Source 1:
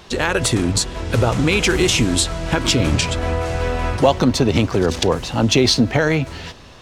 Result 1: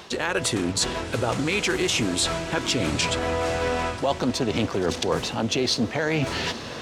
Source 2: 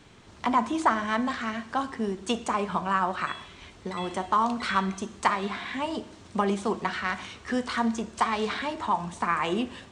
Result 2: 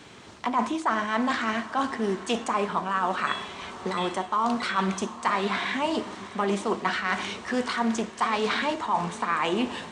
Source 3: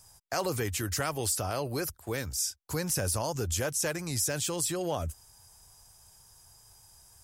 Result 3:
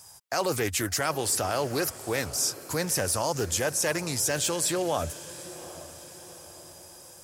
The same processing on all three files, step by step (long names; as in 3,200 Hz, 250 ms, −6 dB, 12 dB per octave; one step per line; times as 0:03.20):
high-pass filter 220 Hz 6 dB per octave
reversed playback
downward compressor 5 to 1, threshold −30 dBFS
reversed playback
feedback delay with all-pass diffusion 768 ms, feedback 51%, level −15.5 dB
highs frequency-modulated by the lows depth 0.14 ms
level +7.5 dB